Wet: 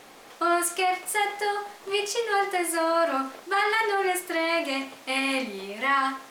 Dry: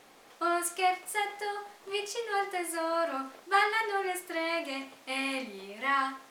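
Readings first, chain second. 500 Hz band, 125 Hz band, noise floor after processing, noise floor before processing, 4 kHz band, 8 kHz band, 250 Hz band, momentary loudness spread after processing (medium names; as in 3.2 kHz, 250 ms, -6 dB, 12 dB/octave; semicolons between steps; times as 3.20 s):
+6.5 dB, no reading, -49 dBFS, -57 dBFS, +6.0 dB, +7.0 dB, +7.0 dB, 6 LU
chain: peak limiter -23 dBFS, peak gain reduction 10.5 dB; trim +8 dB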